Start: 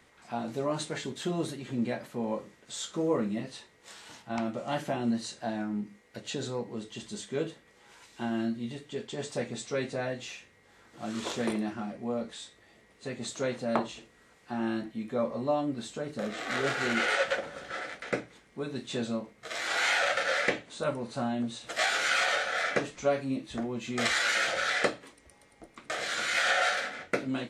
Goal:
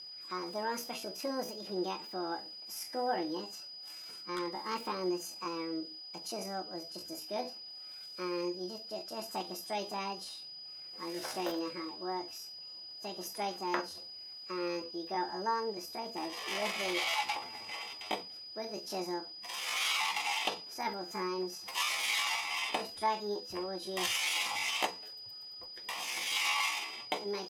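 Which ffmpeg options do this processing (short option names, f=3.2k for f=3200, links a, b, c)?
-af "aeval=exprs='val(0)+0.01*sin(2*PI*3200*n/s)':c=same,asetrate=68011,aresample=44100,atempo=0.64842,volume=-5dB"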